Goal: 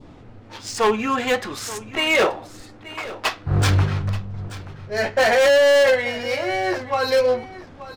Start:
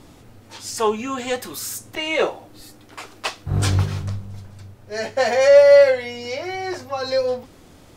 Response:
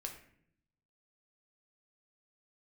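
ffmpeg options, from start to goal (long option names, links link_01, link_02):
-af "adynamicsmooth=sensitivity=5.5:basefreq=3000,adynamicequalizer=threshold=0.0224:dfrequency=1600:dqfactor=0.83:tfrequency=1600:tqfactor=0.83:attack=5:release=100:ratio=0.375:range=3:mode=boostabove:tftype=bell,volume=16dB,asoftclip=hard,volume=-16dB,aecho=1:1:880:0.158,volume=3dB"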